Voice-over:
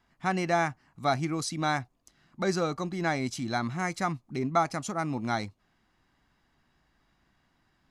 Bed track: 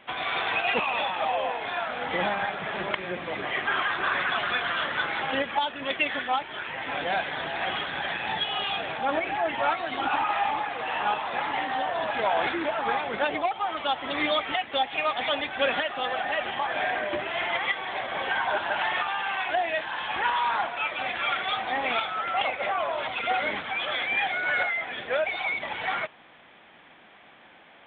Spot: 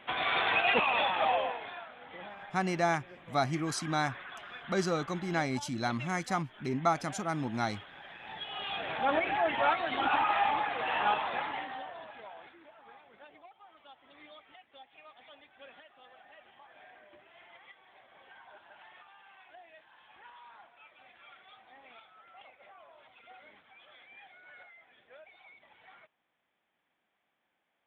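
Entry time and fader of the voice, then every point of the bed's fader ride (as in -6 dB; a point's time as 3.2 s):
2.30 s, -2.5 dB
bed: 1.33 s -1 dB
1.95 s -19 dB
8.1 s -19 dB
9.02 s -2 dB
11.22 s -2 dB
12.53 s -28 dB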